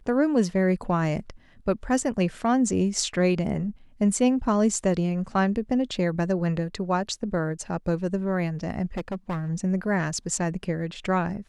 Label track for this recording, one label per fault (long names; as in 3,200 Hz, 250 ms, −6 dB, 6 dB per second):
8.970000	9.500000	clipping −25.5 dBFS